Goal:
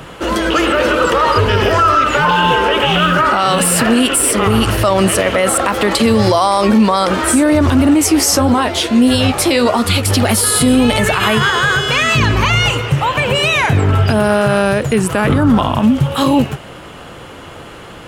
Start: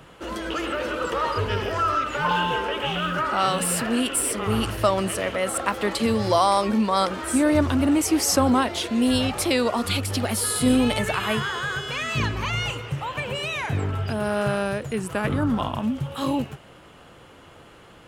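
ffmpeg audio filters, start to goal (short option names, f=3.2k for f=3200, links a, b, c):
-filter_complex "[0:a]asettb=1/sr,asplit=3[a][b][c];[a]atrim=end=7.944[d];[b]atrim=start=7.94:end=10.06,asetpts=PTS-STARTPTS,afade=t=in:d=0.004:c=qsin,afade=t=out:st=2.116:d=0.004:c=qsin,flanger=delay=8.9:depth=6.5:regen=46:speed=1.6:shape=triangular[e];[c]atrim=start=10.056[f];[d][e]acrossfade=d=0.004:c1=hsin:c2=qsin[g];[g][f]acrossfade=d=0.004:c1=qsin:c2=hsin,alimiter=level_in=17.5dB:limit=-1dB:release=50:level=0:latency=1,volume=-2.5dB"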